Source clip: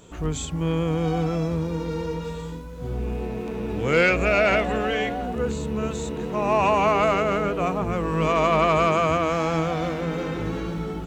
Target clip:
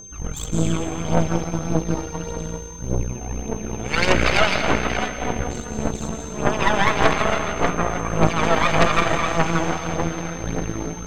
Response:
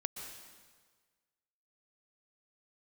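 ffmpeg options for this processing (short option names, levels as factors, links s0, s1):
-filter_complex "[0:a]aphaser=in_gain=1:out_gain=1:delay=1.5:decay=0.74:speed=1.7:type=triangular[s0];[1:a]atrim=start_sample=2205,asetrate=36162,aresample=44100[s1];[s0][s1]afir=irnorm=-1:irlink=0,aeval=exprs='1.12*(cos(1*acos(clip(val(0)/1.12,-1,1)))-cos(1*PI/2))+0.447*(cos(6*acos(clip(val(0)/1.12,-1,1)))-cos(6*PI/2))':c=same,aeval=exprs='val(0)+0.0251*sin(2*PI*6300*n/s)':c=same,volume=0.473"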